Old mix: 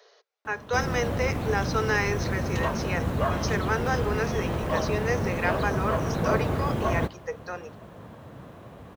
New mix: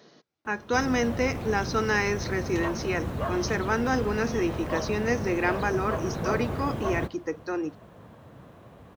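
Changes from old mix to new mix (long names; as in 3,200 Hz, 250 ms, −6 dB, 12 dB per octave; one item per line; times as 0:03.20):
speech: remove Chebyshev high-pass filter 410 Hz, order 6
background −4.5 dB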